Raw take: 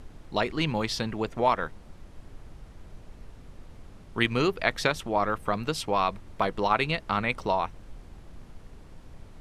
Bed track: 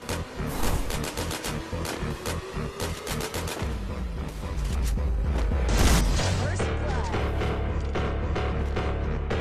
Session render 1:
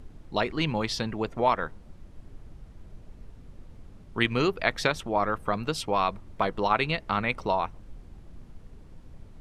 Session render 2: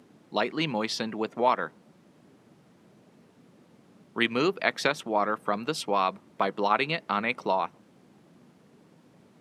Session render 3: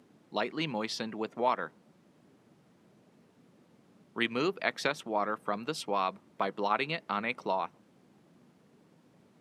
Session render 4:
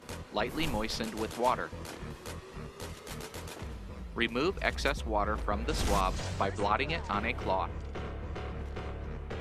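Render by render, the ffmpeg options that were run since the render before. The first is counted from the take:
-af "afftdn=nr=6:nf=-49"
-af "highpass=f=170:w=0.5412,highpass=f=170:w=1.3066"
-af "volume=0.562"
-filter_complex "[1:a]volume=0.266[s0];[0:a][s0]amix=inputs=2:normalize=0"

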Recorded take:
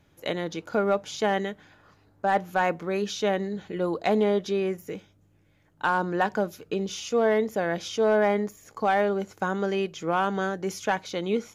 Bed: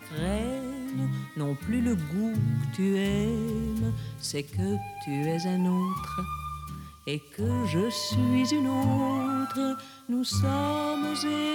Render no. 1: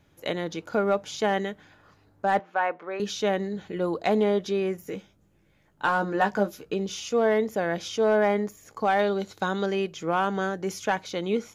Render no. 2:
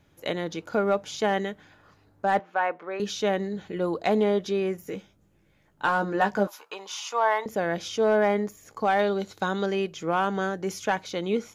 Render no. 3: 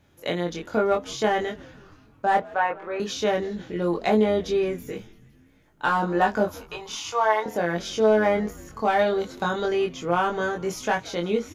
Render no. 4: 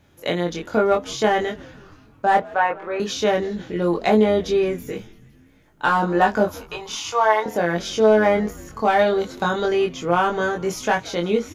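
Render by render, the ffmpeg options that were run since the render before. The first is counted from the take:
-filter_complex "[0:a]asettb=1/sr,asplit=3[s0][s1][s2];[s0]atrim=end=2.394[s3];[s1]atrim=start=2.39:end=3,asetpts=PTS-STARTPTS,afade=t=in:d=0.004:c=qsin,afade=t=out:st=0.606:d=0.004:c=qsin,highpass=520,lowpass=2300[s4];[s2]atrim=start=2.996[s5];[s3][s4]acrossfade=d=0.004:c1=hsin:c2=qsin[s6];[s6][s5]acrossfade=d=0.004:c1=qsin:c2=hsin,asettb=1/sr,asplit=3[s7][s8][s9];[s7]atrim=end=4.824[s10];[s8]atrim=start=4.82:end=6.73,asetpts=PTS-STARTPTS,afade=t=in:d=0.004:c=qsin,afade=t=out:st=1.906:d=0.004:c=qsin,asplit=2[s11][s12];[s12]adelay=15,volume=0.501[s13];[s11][s13]amix=inputs=2:normalize=0,atrim=end_sample=84231[s14];[s9]atrim=start=6.726[s15];[s10][s14]acrossfade=d=0.004:c1=hsin:c2=qsin[s16];[s16][s15]acrossfade=d=0.004:c1=qsin:c2=hsin,asettb=1/sr,asplit=3[s17][s18][s19];[s17]atrim=end=8.994[s20];[s18]atrim=start=8.99:end=9.66,asetpts=PTS-STARTPTS,afade=t=in:d=0.004:c=qsin,afade=t=out:st=0.666:d=0.004:c=qsin,equalizer=f=3900:w=2.8:g=13.5[s21];[s19]atrim=start=9.656[s22];[s20][s21]acrossfade=d=0.004:c1=hsin:c2=qsin[s23];[s23][s22]acrossfade=d=0.004:c1=qsin:c2=hsin"
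-filter_complex "[0:a]asettb=1/sr,asplit=3[s0][s1][s2];[s0]atrim=end=6.474[s3];[s1]atrim=start=6.47:end=7.46,asetpts=PTS-STARTPTS,afade=t=in:d=0.004:c=qsin,afade=t=out:st=0.986:d=0.004:c=qsin,highpass=f=950:t=q:w=5.9[s4];[s2]atrim=start=7.456[s5];[s3][s4]acrossfade=d=0.004:c1=hsin:c2=qsin[s6];[s6][s5]acrossfade=d=0.004:c1=qsin:c2=hsin"
-filter_complex "[0:a]asplit=2[s0][s1];[s1]adelay=23,volume=0.75[s2];[s0][s2]amix=inputs=2:normalize=0,asplit=6[s3][s4][s5][s6][s7][s8];[s4]adelay=168,afreqshift=-130,volume=0.0794[s9];[s5]adelay=336,afreqshift=-260,volume=0.0507[s10];[s6]adelay=504,afreqshift=-390,volume=0.0324[s11];[s7]adelay=672,afreqshift=-520,volume=0.0209[s12];[s8]adelay=840,afreqshift=-650,volume=0.0133[s13];[s3][s9][s10][s11][s12][s13]amix=inputs=6:normalize=0"
-af "volume=1.58"

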